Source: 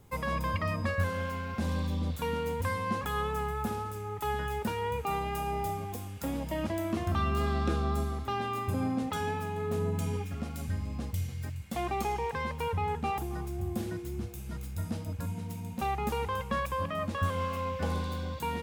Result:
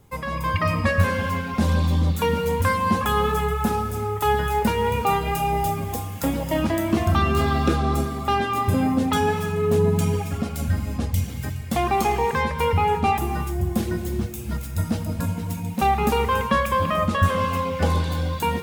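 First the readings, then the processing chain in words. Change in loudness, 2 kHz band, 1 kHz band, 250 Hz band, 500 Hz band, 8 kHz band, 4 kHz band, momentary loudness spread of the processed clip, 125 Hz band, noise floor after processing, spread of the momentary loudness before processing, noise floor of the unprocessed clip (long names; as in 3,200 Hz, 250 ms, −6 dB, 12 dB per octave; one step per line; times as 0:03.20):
+10.5 dB, +10.5 dB, +11.0 dB, +10.5 dB, +10.5 dB, +11.0 dB, +11.0 dB, 6 LU, +10.0 dB, −32 dBFS, 6 LU, −40 dBFS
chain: reverb reduction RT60 0.85 s
automatic gain control gain up to 8.5 dB
reverb whose tail is shaped and stops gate 390 ms flat, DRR 6.5 dB
level +3 dB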